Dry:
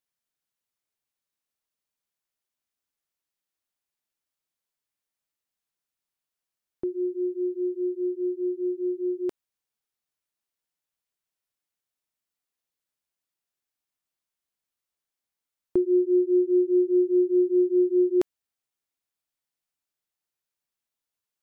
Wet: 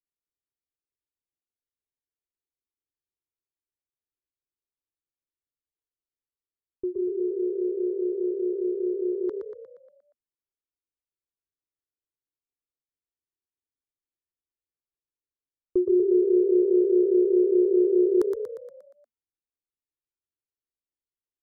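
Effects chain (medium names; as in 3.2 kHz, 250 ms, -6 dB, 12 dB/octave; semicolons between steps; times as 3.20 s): level-controlled noise filter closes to 350 Hz, open at -18.5 dBFS; static phaser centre 680 Hz, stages 6; frequency-shifting echo 118 ms, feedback 53%, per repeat +32 Hz, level -6 dB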